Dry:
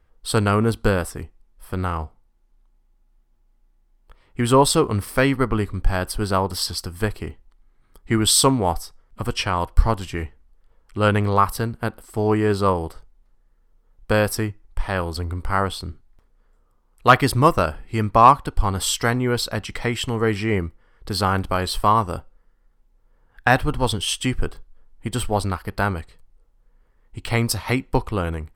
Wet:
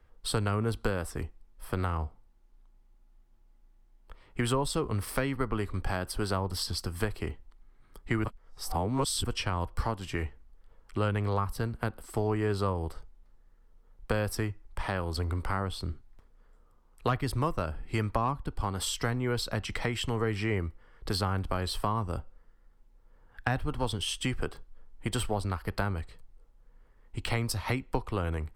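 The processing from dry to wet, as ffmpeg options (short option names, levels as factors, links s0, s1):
-filter_complex "[0:a]asplit=3[s0][s1][s2];[s0]atrim=end=8.242[s3];[s1]atrim=start=8.238:end=9.242,asetpts=PTS-STARTPTS,areverse[s4];[s2]atrim=start=9.238[s5];[s3][s4]acrossfade=d=0.004:c1=hsin:c2=hsin[s6];[s6][s5]acrossfade=d=0.004:c1=hsin:c2=hsin,highshelf=f=7900:g=-4,acrossover=split=85|360[s7][s8][s9];[s7]acompressor=threshold=0.02:ratio=4[s10];[s8]acompressor=threshold=0.0178:ratio=4[s11];[s9]acompressor=threshold=0.0251:ratio=4[s12];[s10][s11][s12]amix=inputs=3:normalize=0"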